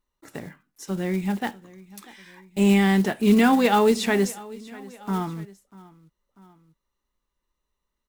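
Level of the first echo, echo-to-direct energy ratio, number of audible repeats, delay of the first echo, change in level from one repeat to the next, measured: −21.0 dB, −20.0 dB, 2, 643 ms, −5.0 dB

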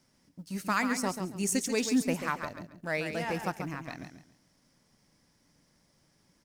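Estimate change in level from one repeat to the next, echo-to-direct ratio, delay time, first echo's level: −12.0 dB, −7.5 dB, 138 ms, −8.0 dB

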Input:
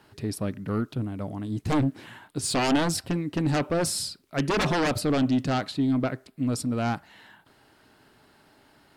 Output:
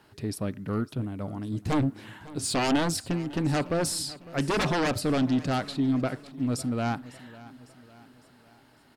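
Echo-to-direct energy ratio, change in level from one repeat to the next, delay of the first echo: −17.5 dB, −6.0 dB, 553 ms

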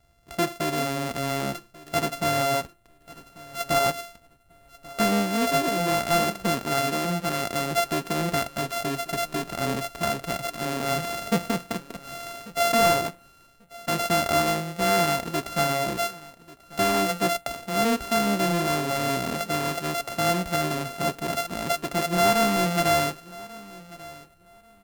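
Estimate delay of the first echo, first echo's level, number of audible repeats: 1,140 ms, −20.0 dB, 2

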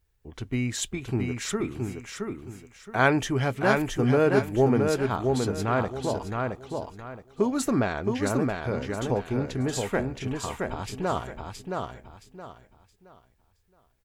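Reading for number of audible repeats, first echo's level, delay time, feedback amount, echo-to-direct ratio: 3, −4.0 dB, 670 ms, 28%, −3.5 dB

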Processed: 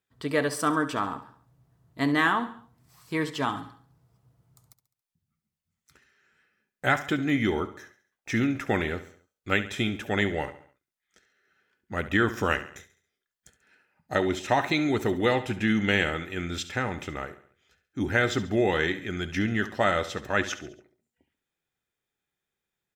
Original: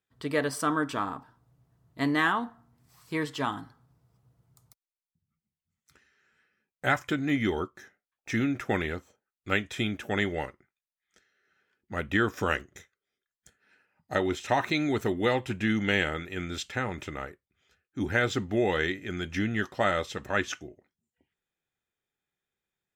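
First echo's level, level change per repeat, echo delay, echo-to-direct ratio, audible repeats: −14.0 dB, −7.0 dB, 69 ms, −13.0 dB, 4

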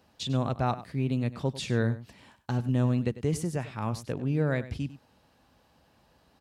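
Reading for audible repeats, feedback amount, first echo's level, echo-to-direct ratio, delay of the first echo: 1, repeats not evenly spaced, −15.0 dB, −15.0 dB, 98 ms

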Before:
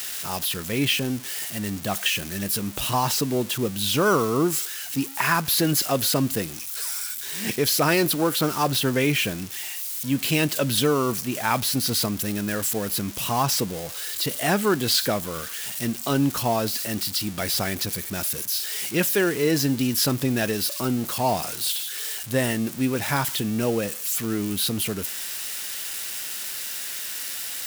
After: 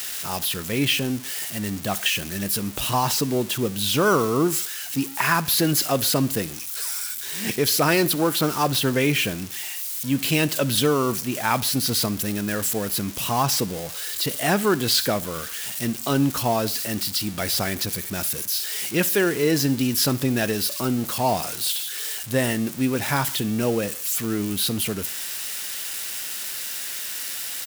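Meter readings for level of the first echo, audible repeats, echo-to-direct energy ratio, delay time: −22.5 dB, 2, −21.5 dB, 66 ms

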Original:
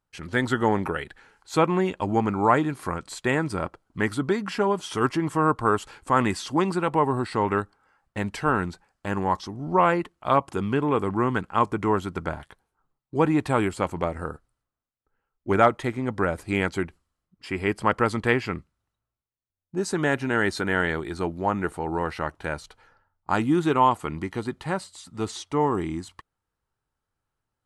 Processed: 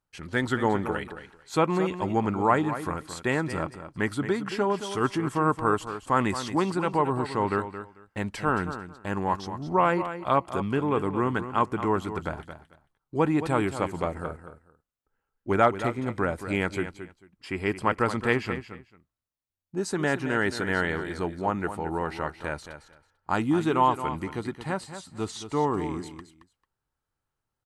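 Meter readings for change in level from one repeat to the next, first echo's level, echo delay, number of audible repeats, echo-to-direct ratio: −15.0 dB, −11.0 dB, 222 ms, 2, −11.0 dB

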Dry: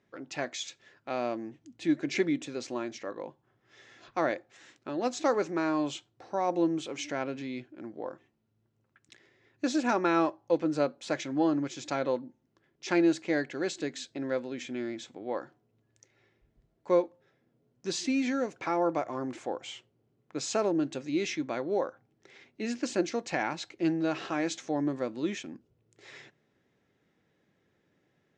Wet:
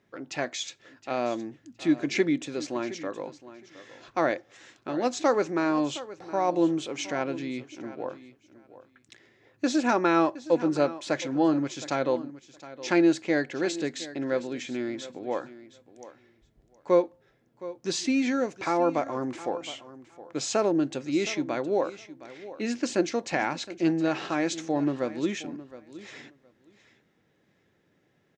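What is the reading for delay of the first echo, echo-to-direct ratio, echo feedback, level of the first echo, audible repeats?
716 ms, −16.0 dB, 16%, −16.0 dB, 2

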